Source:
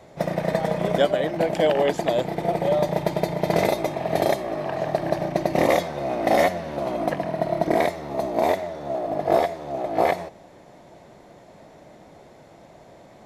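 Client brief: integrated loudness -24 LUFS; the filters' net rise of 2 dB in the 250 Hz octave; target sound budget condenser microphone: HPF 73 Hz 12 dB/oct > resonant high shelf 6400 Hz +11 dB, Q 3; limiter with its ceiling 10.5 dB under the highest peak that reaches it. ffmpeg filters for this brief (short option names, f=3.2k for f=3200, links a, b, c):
-af "equalizer=f=250:t=o:g=3,alimiter=limit=-15.5dB:level=0:latency=1,highpass=73,highshelf=f=6.4k:t=q:w=3:g=11,volume=3dB"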